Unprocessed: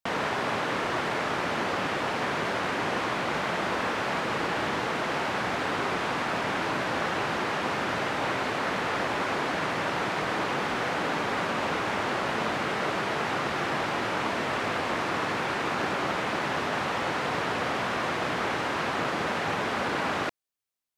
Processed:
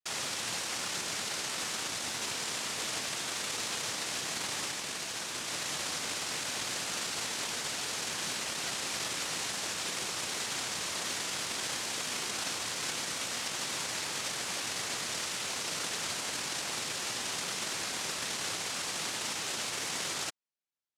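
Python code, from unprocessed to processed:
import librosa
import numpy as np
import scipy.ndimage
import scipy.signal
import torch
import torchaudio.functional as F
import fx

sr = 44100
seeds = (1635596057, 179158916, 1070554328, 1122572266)

y = fx.air_absorb(x, sr, metres=400.0, at=(4.71, 5.48))
y = fx.noise_vocoder(y, sr, seeds[0], bands=1)
y = F.gain(torch.from_numpy(y), -7.0).numpy()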